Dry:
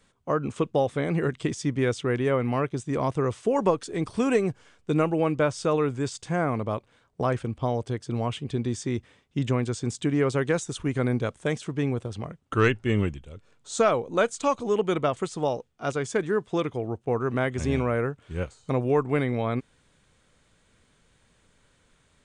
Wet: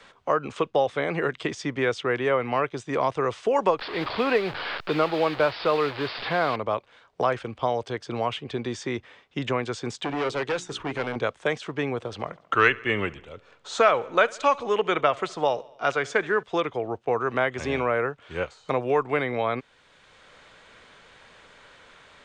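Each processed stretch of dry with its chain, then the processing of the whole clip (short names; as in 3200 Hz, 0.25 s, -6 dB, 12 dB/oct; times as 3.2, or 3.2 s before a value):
3.79–6.56 delta modulation 32 kbps, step -29.5 dBFS + steep low-pass 4900 Hz 72 dB/oct + modulation noise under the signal 28 dB
9.97–11.16 hard clip -25.5 dBFS + notches 60/120/180/240/300/360/420 Hz
11.95–16.43 dynamic EQ 2000 Hz, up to +5 dB, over -38 dBFS, Q 0.94 + feedback echo 70 ms, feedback 59%, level -23 dB
whole clip: three-band isolator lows -14 dB, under 450 Hz, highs -20 dB, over 5400 Hz; three-band squash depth 40%; gain +5 dB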